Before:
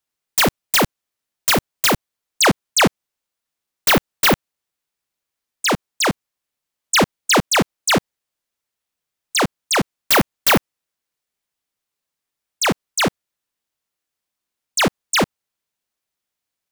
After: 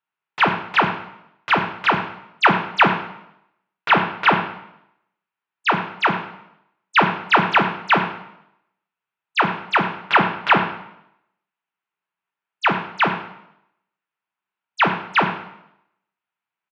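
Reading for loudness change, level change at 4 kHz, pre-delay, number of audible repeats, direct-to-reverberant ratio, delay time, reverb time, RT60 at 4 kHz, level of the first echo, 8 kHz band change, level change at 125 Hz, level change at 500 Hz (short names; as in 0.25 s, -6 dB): -1.0 dB, -6.5 dB, 4 ms, 1, 5.5 dB, 0.101 s, 0.80 s, 0.70 s, -14.0 dB, under -30 dB, -3.0 dB, -4.0 dB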